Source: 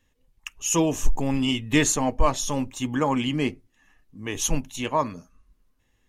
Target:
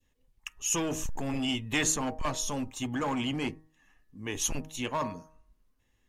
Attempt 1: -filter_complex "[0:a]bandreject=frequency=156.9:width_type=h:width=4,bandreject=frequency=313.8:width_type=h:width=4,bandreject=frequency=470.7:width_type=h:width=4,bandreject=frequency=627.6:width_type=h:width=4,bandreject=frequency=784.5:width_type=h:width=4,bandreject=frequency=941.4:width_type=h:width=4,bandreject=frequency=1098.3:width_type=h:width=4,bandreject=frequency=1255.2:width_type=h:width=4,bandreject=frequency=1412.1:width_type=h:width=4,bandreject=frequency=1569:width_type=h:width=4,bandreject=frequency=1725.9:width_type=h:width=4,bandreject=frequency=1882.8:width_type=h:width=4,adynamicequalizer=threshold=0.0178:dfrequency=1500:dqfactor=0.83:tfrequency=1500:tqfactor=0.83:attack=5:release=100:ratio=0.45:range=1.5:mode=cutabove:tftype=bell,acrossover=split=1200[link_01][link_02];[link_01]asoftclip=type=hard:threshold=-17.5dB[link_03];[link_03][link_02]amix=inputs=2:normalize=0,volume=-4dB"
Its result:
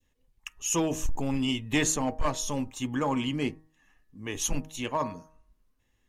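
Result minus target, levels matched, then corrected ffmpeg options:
hard clipping: distortion −6 dB
-filter_complex "[0:a]bandreject=frequency=156.9:width_type=h:width=4,bandreject=frequency=313.8:width_type=h:width=4,bandreject=frequency=470.7:width_type=h:width=4,bandreject=frequency=627.6:width_type=h:width=4,bandreject=frequency=784.5:width_type=h:width=4,bandreject=frequency=941.4:width_type=h:width=4,bandreject=frequency=1098.3:width_type=h:width=4,bandreject=frequency=1255.2:width_type=h:width=4,bandreject=frequency=1412.1:width_type=h:width=4,bandreject=frequency=1569:width_type=h:width=4,bandreject=frequency=1725.9:width_type=h:width=4,bandreject=frequency=1882.8:width_type=h:width=4,adynamicequalizer=threshold=0.0178:dfrequency=1500:dqfactor=0.83:tfrequency=1500:tqfactor=0.83:attack=5:release=100:ratio=0.45:range=1.5:mode=cutabove:tftype=bell,acrossover=split=1200[link_01][link_02];[link_01]asoftclip=type=hard:threshold=-25dB[link_03];[link_03][link_02]amix=inputs=2:normalize=0,volume=-4dB"

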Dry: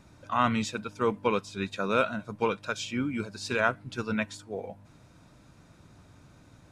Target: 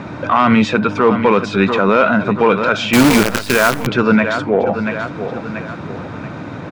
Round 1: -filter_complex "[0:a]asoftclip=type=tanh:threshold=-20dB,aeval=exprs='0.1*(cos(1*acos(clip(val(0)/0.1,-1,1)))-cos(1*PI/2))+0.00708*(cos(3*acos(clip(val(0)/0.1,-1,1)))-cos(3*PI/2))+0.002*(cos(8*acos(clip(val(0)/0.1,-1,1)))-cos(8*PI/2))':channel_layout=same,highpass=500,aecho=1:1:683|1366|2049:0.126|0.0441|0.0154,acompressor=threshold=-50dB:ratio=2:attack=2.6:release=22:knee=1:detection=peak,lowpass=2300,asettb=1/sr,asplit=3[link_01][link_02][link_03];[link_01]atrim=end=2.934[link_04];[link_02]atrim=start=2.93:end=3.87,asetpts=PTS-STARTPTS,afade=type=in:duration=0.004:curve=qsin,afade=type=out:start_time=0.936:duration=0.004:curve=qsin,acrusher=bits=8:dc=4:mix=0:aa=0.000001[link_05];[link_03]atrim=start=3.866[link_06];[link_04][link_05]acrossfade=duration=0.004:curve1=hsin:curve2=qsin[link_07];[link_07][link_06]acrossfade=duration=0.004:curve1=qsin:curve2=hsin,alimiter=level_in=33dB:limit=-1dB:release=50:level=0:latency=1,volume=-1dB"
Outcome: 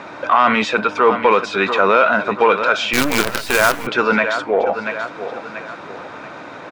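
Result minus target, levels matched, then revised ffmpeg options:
125 Hz band −11.0 dB; soft clipping: distortion +15 dB
-filter_complex "[0:a]asoftclip=type=tanh:threshold=-9.5dB,aeval=exprs='0.1*(cos(1*acos(clip(val(0)/0.1,-1,1)))-cos(1*PI/2))+0.00708*(cos(3*acos(clip(val(0)/0.1,-1,1)))-cos(3*PI/2))+0.002*(cos(8*acos(clip(val(0)/0.1,-1,1)))-cos(8*PI/2))':channel_layout=same,highpass=150,aecho=1:1:683|1366|2049:0.126|0.0441|0.0154,acompressor=threshold=-50dB:ratio=2:attack=2.6:release=22:knee=1:detection=peak,lowpass=2300,asettb=1/sr,asplit=3[link_01][link_02][link_03];[link_01]atrim=end=2.934[link_04];[link_02]atrim=start=2.93:end=3.87,asetpts=PTS-STARTPTS,afade=type=in:duration=0.004:curve=qsin,afade=type=out:start_time=0.936:duration=0.004:curve=qsin,acrusher=bits=8:dc=4:mix=0:aa=0.000001[link_05];[link_03]atrim=start=3.866[link_06];[link_04][link_05]acrossfade=duration=0.004:curve1=hsin:curve2=qsin[link_07];[link_07][link_06]acrossfade=duration=0.004:curve1=qsin:curve2=hsin,alimiter=level_in=33dB:limit=-1dB:release=50:level=0:latency=1,volume=-1dB"

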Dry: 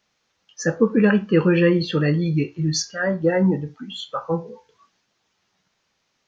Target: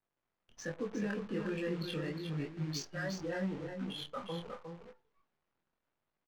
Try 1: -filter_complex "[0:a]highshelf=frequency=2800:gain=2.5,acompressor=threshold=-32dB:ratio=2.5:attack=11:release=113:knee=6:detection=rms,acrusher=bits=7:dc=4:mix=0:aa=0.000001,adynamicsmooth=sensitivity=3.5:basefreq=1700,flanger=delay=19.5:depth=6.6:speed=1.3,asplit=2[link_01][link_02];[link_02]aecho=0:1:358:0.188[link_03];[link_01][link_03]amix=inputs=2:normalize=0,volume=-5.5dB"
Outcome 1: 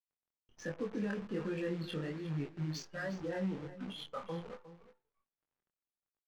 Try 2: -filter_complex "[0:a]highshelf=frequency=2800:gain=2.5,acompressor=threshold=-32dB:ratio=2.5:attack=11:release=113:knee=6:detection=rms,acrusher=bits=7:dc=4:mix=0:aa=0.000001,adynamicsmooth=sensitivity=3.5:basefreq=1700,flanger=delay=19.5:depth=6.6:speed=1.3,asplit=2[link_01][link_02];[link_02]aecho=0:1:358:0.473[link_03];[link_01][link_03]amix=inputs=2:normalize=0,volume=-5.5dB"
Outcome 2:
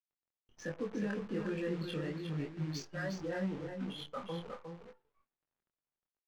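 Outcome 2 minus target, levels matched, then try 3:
4,000 Hz band −3.0 dB
-filter_complex "[0:a]highshelf=frequency=2800:gain=9,acompressor=threshold=-32dB:ratio=2.5:attack=11:release=113:knee=6:detection=rms,acrusher=bits=7:dc=4:mix=0:aa=0.000001,adynamicsmooth=sensitivity=3.5:basefreq=1700,flanger=delay=19.5:depth=6.6:speed=1.3,asplit=2[link_01][link_02];[link_02]aecho=0:1:358:0.473[link_03];[link_01][link_03]amix=inputs=2:normalize=0,volume=-5.5dB"

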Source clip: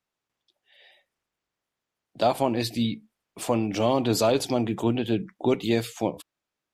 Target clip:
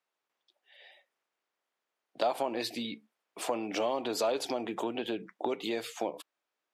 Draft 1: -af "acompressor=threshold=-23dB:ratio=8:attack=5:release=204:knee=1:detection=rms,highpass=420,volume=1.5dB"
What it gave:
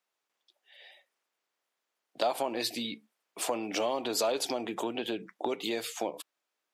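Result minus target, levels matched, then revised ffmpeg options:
8,000 Hz band +5.0 dB
-af "acompressor=threshold=-23dB:ratio=8:attack=5:release=204:knee=1:detection=rms,highpass=420,highshelf=frequency=4300:gain=-8,volume=1.5dB"

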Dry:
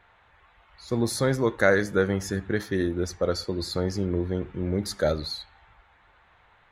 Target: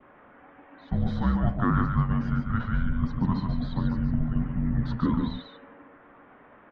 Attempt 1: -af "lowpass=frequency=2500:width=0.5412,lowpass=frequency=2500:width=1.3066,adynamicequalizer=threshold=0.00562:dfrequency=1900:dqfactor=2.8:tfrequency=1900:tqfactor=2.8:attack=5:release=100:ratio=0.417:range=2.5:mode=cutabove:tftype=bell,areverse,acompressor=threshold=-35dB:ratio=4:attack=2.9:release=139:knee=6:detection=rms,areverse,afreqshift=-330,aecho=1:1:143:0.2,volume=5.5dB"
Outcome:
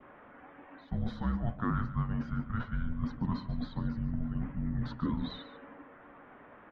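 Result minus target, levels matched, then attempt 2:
downward compressor: peak gain reduction +7.5 dB; echo-to-direct −9 dB
-af "lowpass=frequency=2500:width=0.5412,lowpass=frequency=2500:width=1.3066,adynamicequalizer=threshold=0.00562:dfrequency=1900:dqfactor=2.8:tfrequency=1900:tqfactor=2.8:attack=5:release=100:ratio=0.417:range=2.5:mode=cutabove:tftype=bell,areverse,acompressor=threshold=-25dB:ratio=4:attack=2.9:release=139:knee=6:detection=rms,areverse,afreqshift=-330,aecho=1:1:143:0.562,volume=5.5dB"

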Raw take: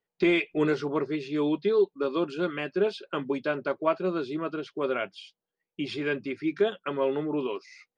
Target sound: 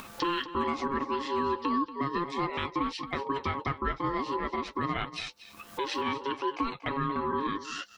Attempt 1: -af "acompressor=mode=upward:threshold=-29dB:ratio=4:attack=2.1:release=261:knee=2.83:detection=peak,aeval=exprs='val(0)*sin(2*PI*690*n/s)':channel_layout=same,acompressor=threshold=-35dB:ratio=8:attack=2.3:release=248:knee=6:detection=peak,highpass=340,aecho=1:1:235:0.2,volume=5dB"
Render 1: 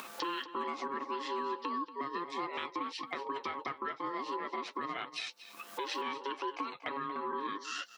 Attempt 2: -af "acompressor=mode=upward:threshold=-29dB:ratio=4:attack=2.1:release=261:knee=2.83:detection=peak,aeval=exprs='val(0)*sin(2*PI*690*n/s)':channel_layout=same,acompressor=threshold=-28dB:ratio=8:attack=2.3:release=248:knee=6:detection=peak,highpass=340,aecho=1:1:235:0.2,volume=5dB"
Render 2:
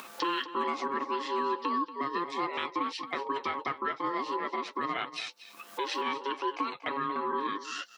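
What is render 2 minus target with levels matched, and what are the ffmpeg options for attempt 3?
250 Hz band −3.5 dB
-af "acompressor=mode=upward:threshold=-29dB:ratio=4:attack=2.1:release=261:knee=2.83:detection=peak,aeval=exprs='val(0)*sin(2*PI*690*n/s)':channel_layout=same,acompressor=threshold=-28dB:ratio=8:attack=2.3:release=248:knee=6:detection=peak,aecho=1:1:235:0.2,volume=5dB"

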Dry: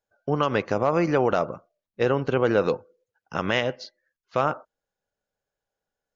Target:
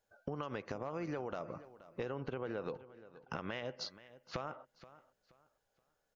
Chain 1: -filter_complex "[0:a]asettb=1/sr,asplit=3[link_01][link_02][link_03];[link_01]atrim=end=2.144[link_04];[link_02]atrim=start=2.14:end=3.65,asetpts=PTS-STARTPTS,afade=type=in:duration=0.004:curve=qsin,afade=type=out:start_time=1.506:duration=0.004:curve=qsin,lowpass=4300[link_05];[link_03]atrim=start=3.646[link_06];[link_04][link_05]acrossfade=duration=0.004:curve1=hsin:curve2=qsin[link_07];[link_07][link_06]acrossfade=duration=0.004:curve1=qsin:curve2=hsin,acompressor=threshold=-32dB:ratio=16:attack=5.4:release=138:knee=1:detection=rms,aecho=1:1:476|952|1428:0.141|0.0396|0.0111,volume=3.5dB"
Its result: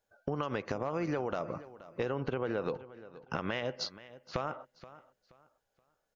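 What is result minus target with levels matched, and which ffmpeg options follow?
downward compressor: peak gain reduction −6.5 dB
-filter_complex "[0:a]asettb=1/sr,asplit=3[link_01][link_02][link_03];[link_01]atrim=end=2.144[link_04];[link_02]atrim=start=2.14:end=3.65,asetpts=PTS-STARTPTS,afade=type=in:duration=0.004:curve=qsin,afade=type=out:start_time=1.506:duration=0.004:curve=qsin,lowpass=4300[link_05];[link_03]atrim=start=3.646[link_06];[link_04][link_05]acrossfade=duration=0.004:curve1=hsin:curve2=qsin[link_07];[link_07][link_06]acrossfade=duration=0.004:curve1=qsin:curve2=hsin,acompressor=threshold=-39dB:ratio=16:attack=5.4:release=138:knee=1:detection=rms,aecho=1:1:476|952|1428:0.141|0.0396|0.0111,volume=3.5dB"

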